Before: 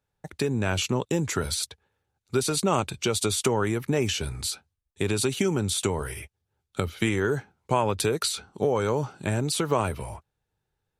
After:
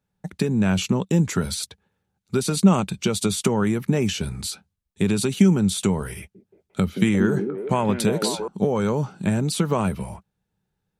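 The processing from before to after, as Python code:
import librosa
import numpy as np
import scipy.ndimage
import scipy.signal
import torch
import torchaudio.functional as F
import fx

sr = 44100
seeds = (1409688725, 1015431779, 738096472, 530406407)

y = fx.peak_eq(x, sr, hz=190.0, db=15.0, octaves=0.56)
y = fx.echo_stepped(y, sr, ms=176, hz=290.0, octaves=0.7, feedback_pct=70, wet_db=-2, at=(6.17, 8.48))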